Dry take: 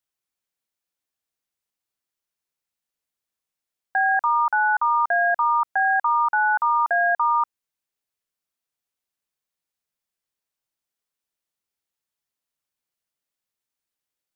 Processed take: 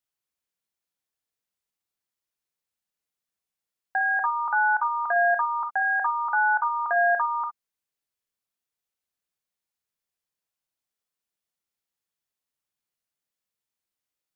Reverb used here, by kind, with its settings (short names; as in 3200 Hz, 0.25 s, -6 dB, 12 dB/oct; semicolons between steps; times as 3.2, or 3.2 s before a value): non-linear reverb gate 80 ms rising, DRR 7 dB; gain -3 dB